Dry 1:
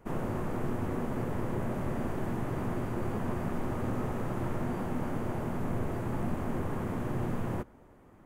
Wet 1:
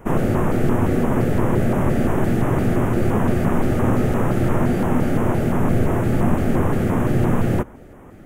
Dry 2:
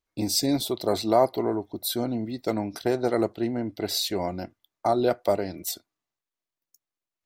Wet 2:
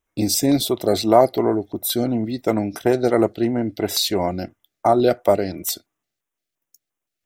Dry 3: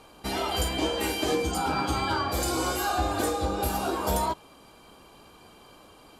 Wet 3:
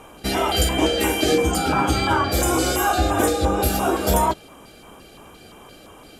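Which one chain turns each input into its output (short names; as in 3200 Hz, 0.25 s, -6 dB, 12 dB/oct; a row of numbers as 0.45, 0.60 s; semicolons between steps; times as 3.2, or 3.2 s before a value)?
LFO notch square 2.9 Hz 1000–4400 Hz; match loudness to -20 LUFS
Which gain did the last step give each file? +15.0, +7.0, +8.5 dB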